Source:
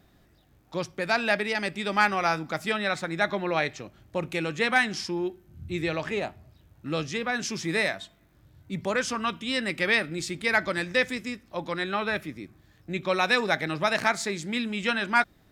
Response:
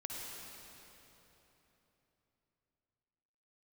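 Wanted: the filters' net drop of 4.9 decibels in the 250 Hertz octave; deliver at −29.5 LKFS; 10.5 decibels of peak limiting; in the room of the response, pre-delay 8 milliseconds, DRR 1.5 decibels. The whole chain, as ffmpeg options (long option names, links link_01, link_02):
-filter_complex "[0:a]equalizer=frequency=250:width_type=o:gain=-7,alimiter=limit=-19.5dB:level=0:latency=1,asplit=2[link_01][link_02];[1:a]atrim=start_sample=2205,adelay=8[link_03];[link_02][link_03]afir=irnorm=-1:irlink=0,volume=-1.5dB[link_04];[link_01][link_04]amix=inputs=2:normalize=0,volume=0.5dB"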